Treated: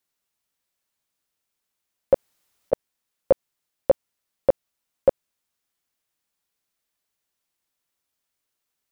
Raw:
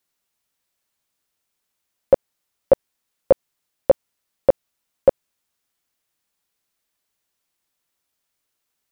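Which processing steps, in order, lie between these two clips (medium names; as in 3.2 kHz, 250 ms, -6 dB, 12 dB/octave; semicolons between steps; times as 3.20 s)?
2.14–2.73 s: compressor with a negative ratio -20 dBFS, ratio -0.5; trim -3.5 dB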